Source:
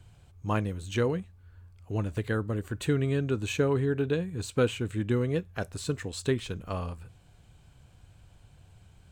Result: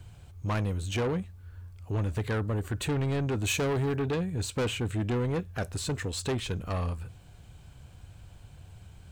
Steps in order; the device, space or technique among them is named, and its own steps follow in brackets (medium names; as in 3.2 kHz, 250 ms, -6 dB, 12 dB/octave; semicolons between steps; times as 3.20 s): open-reel tape (saturation -30 dBFS, distortion -8 dB; peaking EQ 75 Hz +3 dB 0.95 oct; white noise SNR 47 dB); 3.44–3.96 s: treble shelf 4.6 kHz +8.5 dB; trim +4.5 dB